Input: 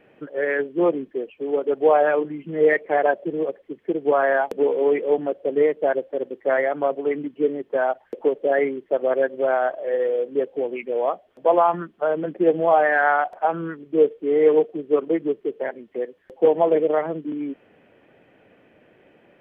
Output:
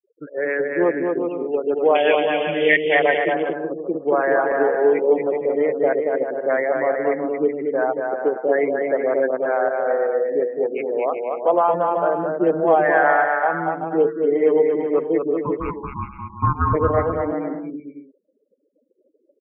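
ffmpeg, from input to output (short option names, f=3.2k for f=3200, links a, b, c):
-filter_complex "[0:a]asettb=1/sr,asplit=3[a][b][c];[a]atrim=end=1.954[d];[b]atrim=start=1.95:end=2.95,asetpts=PTS-STARTPTS,afade=t=in:d=0.004:c=qsin,afade=t=out:st=0.996:d=0.004:c=qsin,highshelf=f=1.9k:t=q:w=3:g=13.5[e];[c]atrim=start=2.946[f];[d][e]acrossfade=d=0.004:c1=hsin:c2=qsin[g];[g][f]acrossfade=d=0.004:c1=qsin:c2=hsin,asplit=3[h][i][j];[h]afade=t=out:st=15.35:d=0.02[k];[i]aeval=exprs='val(0)*sin(2*PI*590*n/s)':c=same,afade=t=in:st=15.35:d=0.02,afade=t=out:st=16.73:d=0.02[l];[j]afade=t=in:st=16.73:d=0.02[m];[k][l][m]amix=inputs=3:normalize=0,bandreject=f=228.7:t=h:w=4,bandreject=f=457.4:t=h:w=4,bandreject=f=686.1:t=h:w=4,bandreject=f=914.8:t=h:w=4,afftfilt=real='re*gte(hypot(re,im),0.0126)':imag='im*gte(hypot(re,im),0.0126)':win_size=1024:overlap=0.75,asplit=2[n][o];[o]aecho=0:1:230|379.5|476.7|539.8|580.9:0.631|0.398|0.251|0.158|0.1[p];[n][p]amix=inputs=2:normalize=0,aresample=8000,aresample=44100"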